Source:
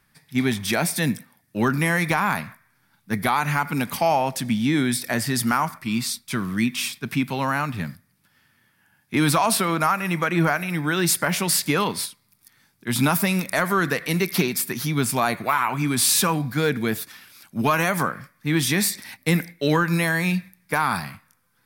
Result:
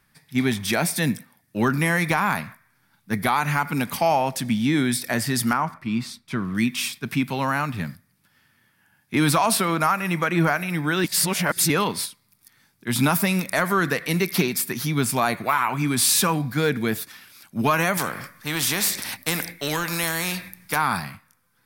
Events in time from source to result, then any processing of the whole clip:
0:05.53–0:06.55: low-pass filter 1,800 Hz 6 dB per octave
0:11.04–0:11.70: reverse
0:17.97–0:20.76: every bin compressed towards the loudest bin 2 to 1

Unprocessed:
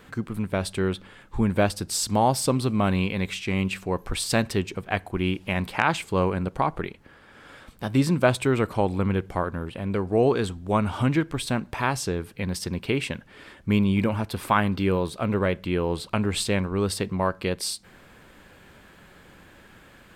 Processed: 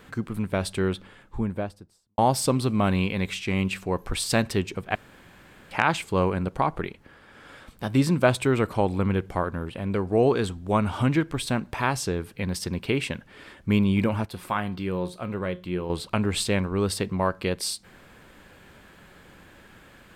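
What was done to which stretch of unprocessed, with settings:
0:00.84–0:02.18: fade out and dull
0:04.95–0:05.71: fill with room tone
0:14.26–0:15.90: tuned comb filter 180 Hz, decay 0.27 s

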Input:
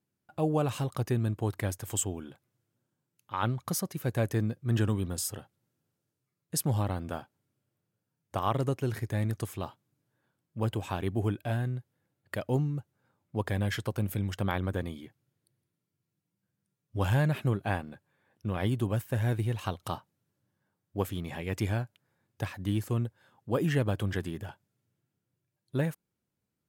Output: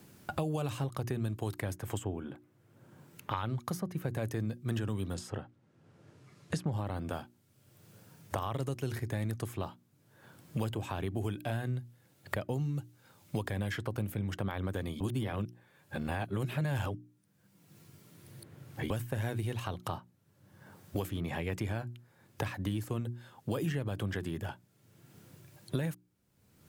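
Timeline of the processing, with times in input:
0:05.14–0:06.73: low-pass filter 6,800 Hz
0:15.00–0:18.90: reverse
whole clip: mains-hum notches 60/120/180/240/300/360 Hz; brickwall limiter −21 dBFS; multiband upward and downward compressor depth 100%; level −2.5 dB

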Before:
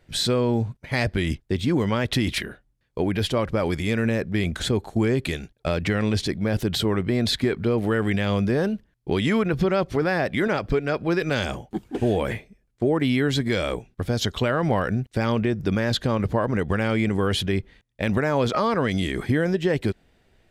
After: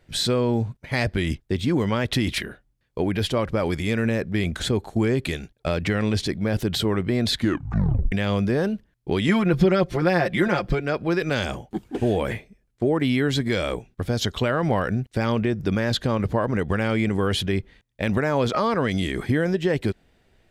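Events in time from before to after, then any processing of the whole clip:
0:07.37: tape stop 0.75 s
0:09.28–0:10.81: comb filter 5.7 ms, depth 77%

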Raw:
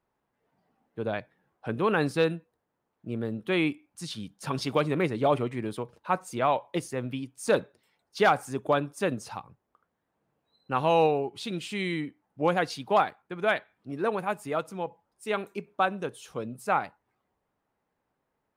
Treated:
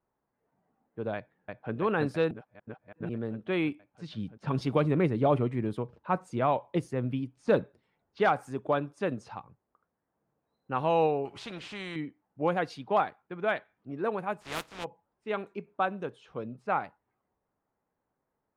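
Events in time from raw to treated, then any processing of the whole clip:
0:01.15–0:01.73: delay throw 330 ms, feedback 70%, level −2 dB
0:02.31–0:03.09: reverse
0:04.08–0:08.20: low-shelf EQ 290 Hz +8 dB
0:11.25–0:11.96: every bin compressed towards the loudest bin 2 to 1
0:14.40–0:14.83: compressing power law on the bin magnitudes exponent 0.21
whole clip: low-pass that shuts in the quiet parts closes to 2,200 Hz, open at −24.5 dBFS; high-shelf EQ 3,900 Hz −12 dB; level −2.5 dB

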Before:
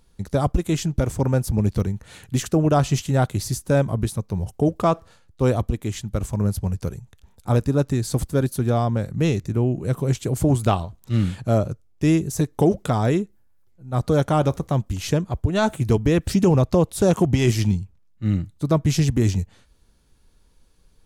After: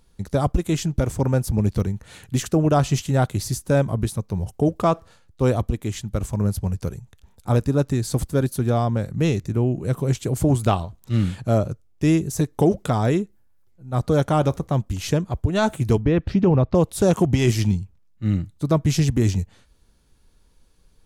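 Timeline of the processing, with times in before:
0:14.06–0:14.90: one half of a high-frequency compander decoder only
0:16.01–0:16.75: high-frequency loss of the air 280 metres

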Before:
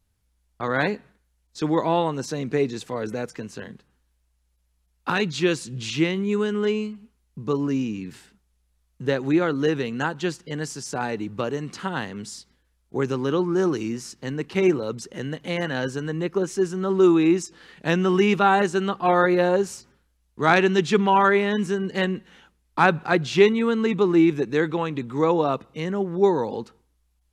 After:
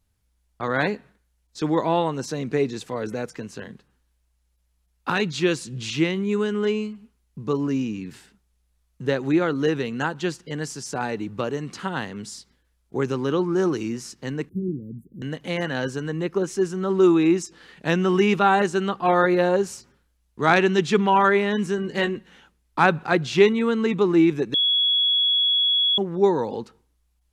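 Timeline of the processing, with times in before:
0:14.49–0:15.22: inverse Chebyshev band-stop filter 1,000–5,400 Hz, stop band 70 dB
0:21.76–0:22.16: double-tracking delay 19 ms −7 dB
0:24.54–0:25.98: beep over 3,360 Hz −17 dBFS

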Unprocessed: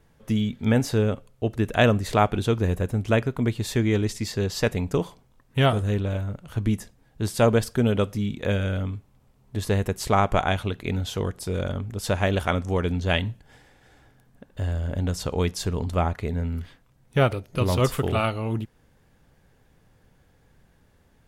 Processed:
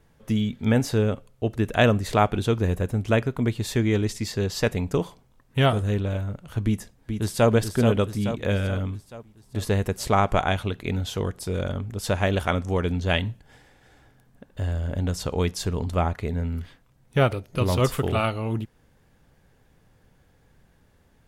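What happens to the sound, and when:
0:06.65–0:07.50: delay throw 430 ms, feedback 55%, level −6.5 dB

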